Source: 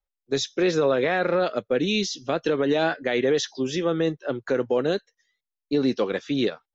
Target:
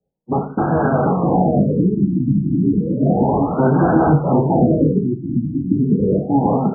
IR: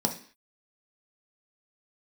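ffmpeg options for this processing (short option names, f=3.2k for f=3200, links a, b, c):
-filter_complex "[0:a]lowpass=4.9k,lowshelf=f=60:g=-10,acrossover=split=570|1100[a][b][c];[a]asoftclip=type=tanh:threshold=-28.5dB[d];[b]aeval=exprs='val(0)*sin(2*PI*400*n/s)':c=same[e];[c]acrusher=bits=6:mix=0:aa=0.000001[f];[d][e][f]amix=inputs=3:normalize=0,aeval=exprs='0.188*sin(PI/2*7.94*val(0)/0.188)':c=same,aecho=1:1:739|1478|2217:0.708|0.142|0.0283[g];[1:a]atrim=start_sample=2205,asetrate=37485,aresample=44100[h];[g][h]afir=irnorm=-1:irlink=0,afftfilt=real='re*lt(b*sr/1024,340*pow(1700/340,0.5+0.5*sin(2*PI*0.32*pts/sr)))':imag='im*lt(b*sr/1024,340*pow(1700/340,0.5+0.5*sin(2*PI*0.32*pts/sr)))':win_size=1024:overlap=0.75,volume=-9.5dB"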